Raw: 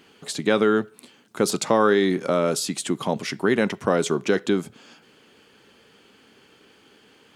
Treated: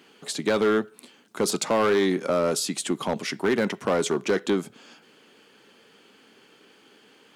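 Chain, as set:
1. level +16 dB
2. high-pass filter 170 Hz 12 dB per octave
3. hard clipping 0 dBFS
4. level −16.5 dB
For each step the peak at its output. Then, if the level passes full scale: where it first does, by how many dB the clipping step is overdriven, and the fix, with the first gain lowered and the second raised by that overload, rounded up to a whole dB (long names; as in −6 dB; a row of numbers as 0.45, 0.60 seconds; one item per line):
+10.5, +10.0, 0.0, −16.5 dBFS
step 1, 10.0 dB
step 1 +6 dB, step 4 −6.5 dB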